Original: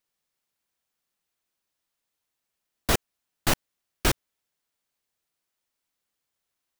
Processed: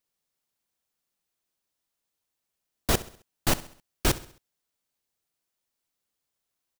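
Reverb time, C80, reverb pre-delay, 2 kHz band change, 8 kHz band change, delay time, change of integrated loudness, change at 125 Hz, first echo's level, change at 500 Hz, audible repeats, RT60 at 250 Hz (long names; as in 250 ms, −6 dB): no reverb audible, no reverb audible, no reverb audible, −3.0 dB, −0.5 dB, 66 ms, −1.0 dB, 0.0 dB, −17.0 dB, −0.5 dB, 3, no reverb audible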